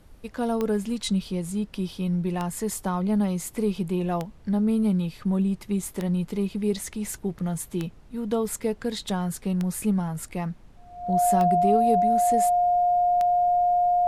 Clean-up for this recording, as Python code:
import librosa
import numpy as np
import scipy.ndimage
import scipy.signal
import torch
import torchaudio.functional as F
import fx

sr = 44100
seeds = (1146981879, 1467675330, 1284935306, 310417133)

y = fx.fix_declick_ar(x, sr, threshold=10.0)
y = fx.notch(y, sr, hz=710.0, q=30.0)
y = fx.noise_reduce(y, sr, print_start_s=10.52, print_end_s=11.02, reduce_db=23.0)